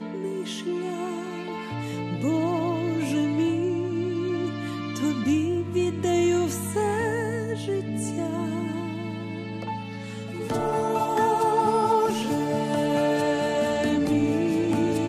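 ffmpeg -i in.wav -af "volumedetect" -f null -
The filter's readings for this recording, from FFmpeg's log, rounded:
mean_volume: -25.4 dB
max_volume: -11.9 dB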